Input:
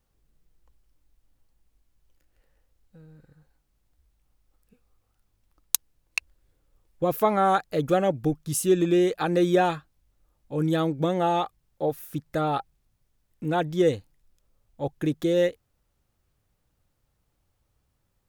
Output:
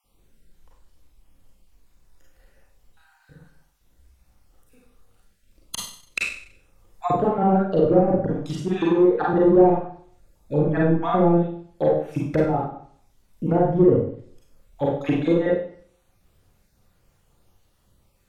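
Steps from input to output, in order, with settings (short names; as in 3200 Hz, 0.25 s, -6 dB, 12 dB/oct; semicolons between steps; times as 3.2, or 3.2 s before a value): random spectral dropouts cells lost 33%; overloaded stage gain 21.5 dB; 8.25–9.33 low shelf 320 Hz -7.5 dB; treble ducked by the level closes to 510 Hz, closed at -26 dBFS; Schroeder reverb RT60 0.55 s, combs from 32 ms, DRR -4 dB; gain +7 dB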